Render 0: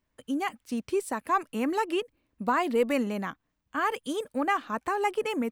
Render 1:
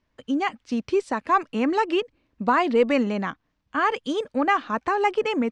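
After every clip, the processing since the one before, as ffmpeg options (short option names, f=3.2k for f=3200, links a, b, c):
-af "lowpass=f=6k:w=0.5412,lowpass=f=6k:w=1.3066,volume=5.5dB"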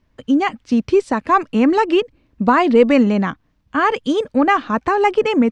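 -af "lowshelf=f=280:g=8.5,volume=5dB"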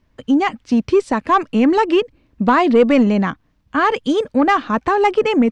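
-af "aeval=exprs='0.891*(cos(1*acos(clip(val(0)/0.891,-1,1)))-cos(1*PI/2))+0.0562*(cos(5*acos(clip(val(0)/0.891,-1,1)))-cos(5*PI/2))':c=same,volume=-1dB"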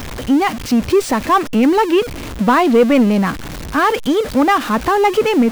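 -af "aeval=exprs='val(0)+0.5*0.0841*sgn(val(0))':c=same"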